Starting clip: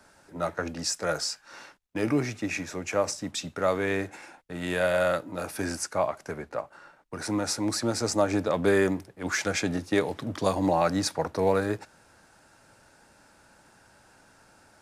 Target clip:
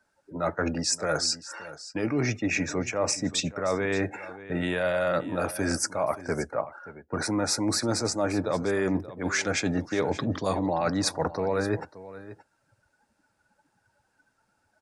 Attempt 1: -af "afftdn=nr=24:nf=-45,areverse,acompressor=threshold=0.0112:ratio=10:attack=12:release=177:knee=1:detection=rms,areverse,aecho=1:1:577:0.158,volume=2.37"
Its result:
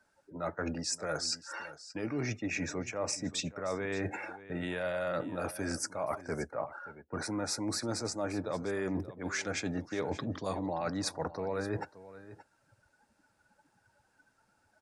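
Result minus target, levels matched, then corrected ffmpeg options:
compression: peak gain reduction +8 dB
-af "afftdn=nr=24:nf=-45,areverse,acompressor=threshold=0.0316:ratio=10:attack=12:release=177:knee=1:detection=rms,areverse,aecho=1:1:577:0.158,volume=2.37"

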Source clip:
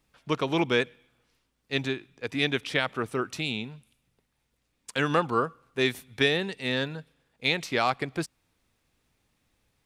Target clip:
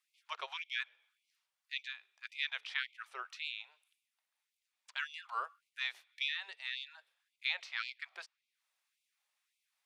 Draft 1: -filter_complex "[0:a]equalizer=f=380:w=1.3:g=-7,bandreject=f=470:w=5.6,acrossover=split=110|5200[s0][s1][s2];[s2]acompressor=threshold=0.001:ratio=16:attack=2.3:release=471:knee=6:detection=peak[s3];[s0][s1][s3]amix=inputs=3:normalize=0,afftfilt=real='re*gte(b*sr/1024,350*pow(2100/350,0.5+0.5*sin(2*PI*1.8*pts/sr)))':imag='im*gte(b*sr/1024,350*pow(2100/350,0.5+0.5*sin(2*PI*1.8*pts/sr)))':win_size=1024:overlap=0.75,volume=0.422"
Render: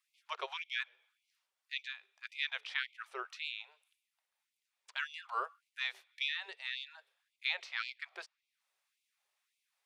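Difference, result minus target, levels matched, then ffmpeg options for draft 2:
500 Hz band +6.5 dB
-filter_complex "[0:a]equalizer=f=380:w=1.3:g=-18.5,bandreject=f=470:w=5.6,acrossover=split=110|5200[s0][s1][s2];[s2]acompressor=threshold=0.001:ratio=16:attack=2.3:release=471:knee=6:detection=peak[s3];[s0][s1][s3]amix=inputs=3:normalize=0,afftfilt=real='re*gte(b*sr/1024,350*pow(2100/350,0.5+0.5*sin(2*PI*1.8*pts/sr)))':imag='im*gte(b*sr/1024,350*pow(2100/350,0.5+0.5*sin(2*PI*1.8*pts/sr)))':win_size=1024:overlap=0.75,volume=0.422"

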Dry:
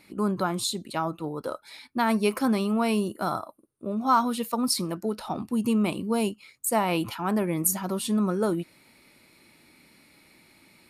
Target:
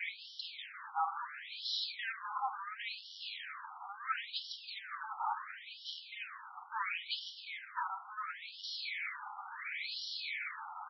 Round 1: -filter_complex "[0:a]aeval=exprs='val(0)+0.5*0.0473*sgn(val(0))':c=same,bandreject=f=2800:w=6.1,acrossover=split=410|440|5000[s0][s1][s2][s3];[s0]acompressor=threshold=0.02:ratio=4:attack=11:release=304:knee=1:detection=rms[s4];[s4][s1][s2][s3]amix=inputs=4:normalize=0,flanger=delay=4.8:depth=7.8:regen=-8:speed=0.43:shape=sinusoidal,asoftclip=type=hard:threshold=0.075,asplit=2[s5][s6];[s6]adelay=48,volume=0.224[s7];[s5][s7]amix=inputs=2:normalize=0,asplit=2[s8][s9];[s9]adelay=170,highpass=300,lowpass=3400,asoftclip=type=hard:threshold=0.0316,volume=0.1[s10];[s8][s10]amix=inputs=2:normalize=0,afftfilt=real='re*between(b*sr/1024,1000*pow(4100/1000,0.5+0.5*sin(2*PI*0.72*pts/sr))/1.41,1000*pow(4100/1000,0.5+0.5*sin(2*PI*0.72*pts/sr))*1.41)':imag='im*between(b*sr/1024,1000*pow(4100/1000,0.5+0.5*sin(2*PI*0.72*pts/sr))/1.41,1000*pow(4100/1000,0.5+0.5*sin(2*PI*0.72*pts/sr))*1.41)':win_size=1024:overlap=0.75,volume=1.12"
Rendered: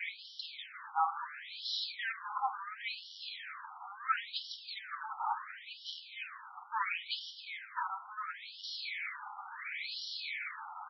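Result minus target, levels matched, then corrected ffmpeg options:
hard clipper: distortion -6 dB
-filter_complex "[0:a]aeval=exprs='val(0)+0.5*0.0473*sgn(val(0))':c=same,bandreject=f=2800:w=6.1,acrossover=split=410|440|5000[s0][s1][s2][s3];[s0]acompressor=threshold=0.02:ratio=4:attack=11:release=304:knee=1:detection=rms[s4];[s4][s1][s2][s3]amix=inputs=4:normalize=0,flanger=delay=4.8:depth=7.8:regen=-8:speed=0.43:shape=sinusoidal,asoftclip=type=hard:threshold=0.0376,asplit=2[s5][s6];[s6]adelay=48,volume=0.224[s7];[s5][s7]amix=inputs=2:normalize=0,asplit=2[s8][s9];[s9]adelay=170,highpass=300,lowpass=3400,asoftclip=type=hard:threshold=0.0316,volume=0.1[s10];[s8][s10]amix=inputs=2:normalize=0,afftfilt=real='re*between(b*sr/1024,1000*pow(4100/1000,0.5+0.5*sin(2*PI*0.72*pts/sr))/1.41,1000*pow(4100/1000,0.5+0.5*sin(2*PI*0.72*pts/sr))*1.41)':imag='im*between(b*sr/1024,1000*pow(4100/1000,0.5+0.5*sin(2*PI*0.72*pts/sr))/1.41,1000*pow(4100/1000,0.5+0.5*sin(2*PI*0.72*pts/sr))*1.41)':win_size=1024:overlap=0.75,volume=1.12"

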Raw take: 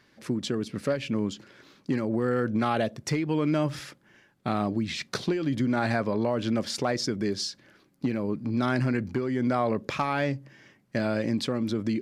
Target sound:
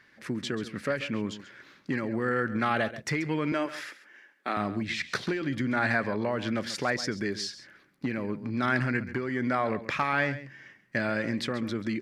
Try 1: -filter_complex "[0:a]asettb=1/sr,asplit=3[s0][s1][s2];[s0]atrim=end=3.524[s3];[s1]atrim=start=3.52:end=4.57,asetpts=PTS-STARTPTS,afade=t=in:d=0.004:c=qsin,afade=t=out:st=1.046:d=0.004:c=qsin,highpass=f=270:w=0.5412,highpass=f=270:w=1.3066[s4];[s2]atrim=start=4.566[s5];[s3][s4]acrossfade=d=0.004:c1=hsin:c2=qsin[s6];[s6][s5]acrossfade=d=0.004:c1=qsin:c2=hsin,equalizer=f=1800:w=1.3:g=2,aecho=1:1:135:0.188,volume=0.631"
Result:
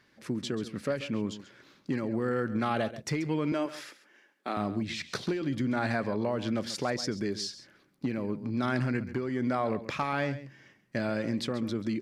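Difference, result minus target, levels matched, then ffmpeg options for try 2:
2 kHz band -6.0 dB
-filter_complex "[0:a]asettb=1/sr,asplit=3[s0][s1][s2];[s0]atrim=end=3.524[s3];[s1]atrim=start=3.52:end=4.57,asetpts=PTS-STARTPTS,afade=t=in:d=0.004:c=qsin,afade=t=out:st=1.046:d=0.004:c=qsin,highpass=f=270:w=0.5412,highpass=f=270:w=1.3066[s4];[s2]atrim=start=4.566[s5];[s3][s4]acrossfade=d=0.004:c1=hsin:c2=qsin[s6];[s6][s5]acrossfade=d=0.004:c1=qsin:c2=hsin,equalizer=f=1800:w=1.3:g=11,aecho=1:1:135:0.188,volume=0.631"

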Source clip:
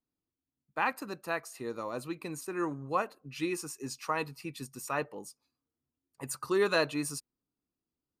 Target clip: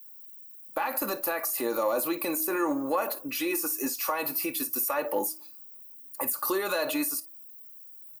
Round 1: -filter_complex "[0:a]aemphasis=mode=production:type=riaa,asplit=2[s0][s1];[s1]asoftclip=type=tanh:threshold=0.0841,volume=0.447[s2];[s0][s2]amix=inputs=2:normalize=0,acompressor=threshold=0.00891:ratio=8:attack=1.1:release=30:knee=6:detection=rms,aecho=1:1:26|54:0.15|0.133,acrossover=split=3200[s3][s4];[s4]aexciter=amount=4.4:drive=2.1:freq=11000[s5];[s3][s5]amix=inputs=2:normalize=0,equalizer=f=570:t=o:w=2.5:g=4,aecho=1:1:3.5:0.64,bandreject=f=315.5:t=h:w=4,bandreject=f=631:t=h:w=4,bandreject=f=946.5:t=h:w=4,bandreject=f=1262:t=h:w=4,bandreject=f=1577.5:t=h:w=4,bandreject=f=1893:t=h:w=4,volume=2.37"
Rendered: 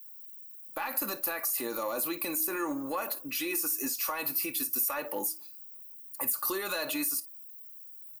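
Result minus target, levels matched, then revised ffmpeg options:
saturation: distortion +14 dB; 500 Hz band -5.5 dB
-filter_complex "[0:a]aemphasis=mode=production:type=riaa,asplit=2[s0][s1];[s1]asoftclip=type=tanh:threshold=0.282,volume=0.447[s2];[s0][s2]amix=inputs=2:normalize=0,acompressor=threshold=0.00891:ratio=8:attack=1.1:release=30:knee=6:detection=rms,aecho=1:1:26|54:0.15|0.133,acrossover=split=3200[s3][s4];[s4]aexciter=amount=4.4:drive=2.1:freq=11000[s5];[s3][s5]amix=inputs=2:normalize=0,equalizer=f=570:t=o:w=2.5:g=12,aecho=1:1:3.5:0.64,bandreject=f=315.5:t=h:w=4,bandreject=f=631:t=h:w=4,bandreject=f=946.5:t=h:w=4,bandreject=f=1262:t=h:w=4,bandreject=f=1577.5:t=h:w=4,bandreject=f=1893:t=h:w=4,volume=2.37"

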